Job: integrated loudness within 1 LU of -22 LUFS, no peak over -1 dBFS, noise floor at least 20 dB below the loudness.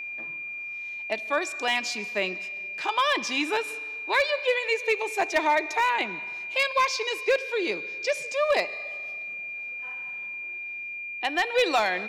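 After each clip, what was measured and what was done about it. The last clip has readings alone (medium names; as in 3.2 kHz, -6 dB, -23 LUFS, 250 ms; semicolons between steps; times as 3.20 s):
clipped samples 0.3%; clipping level -15.0 dBFS; steady tone 2.4 kHz; tone level -33 dBFS; loudness -27.0 LUFS; peak level -15.0 dBFS; loudness target -22.0 LUFS
-> clip repair -15 dBFS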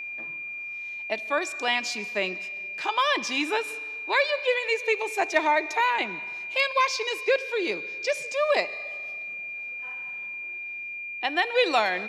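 clipped samples 0.0%; steady tone 2.4 kHz; tone level -33 dBFS
-> band-stop 2.4 kHz, Q 30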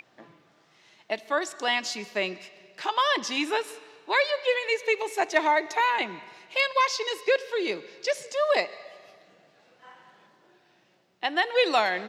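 steady tone not found; loudness -26.5 LUFS; peak level -8.0 dBFS; loudness target -22.0 LUFS
-> trim +4.5 dB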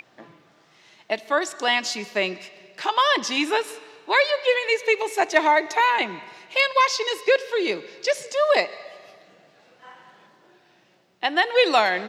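loudness -22.0 LUFS; peak level -3.5 dBFS; noise floor -59 dBFS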